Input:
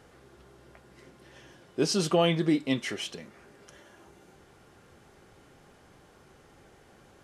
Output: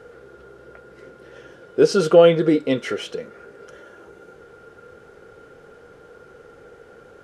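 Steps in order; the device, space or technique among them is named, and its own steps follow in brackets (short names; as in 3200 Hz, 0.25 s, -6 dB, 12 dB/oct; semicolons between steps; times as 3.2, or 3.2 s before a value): inside a helmet (high shelf 5100 Hz -6 dB; small resonant body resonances 470/1400 Hz, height 17 dB, ringing for 40 ms); gain +3.5 dB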